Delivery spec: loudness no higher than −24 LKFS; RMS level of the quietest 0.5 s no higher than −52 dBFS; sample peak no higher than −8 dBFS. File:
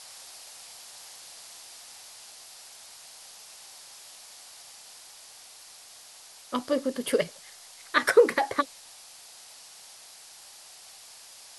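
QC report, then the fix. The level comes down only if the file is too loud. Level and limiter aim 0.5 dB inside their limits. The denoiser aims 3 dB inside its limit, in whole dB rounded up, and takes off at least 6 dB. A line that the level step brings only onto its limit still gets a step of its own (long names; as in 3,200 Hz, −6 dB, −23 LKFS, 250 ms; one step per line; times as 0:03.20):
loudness −26.0 LKFS: in spec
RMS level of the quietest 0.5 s −50 dBFS: out of spec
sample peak −7.5 dBFS: out of spec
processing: broadband denoise 6 dB, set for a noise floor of −50 dBFS
brickwall limiter −8.5 dBFS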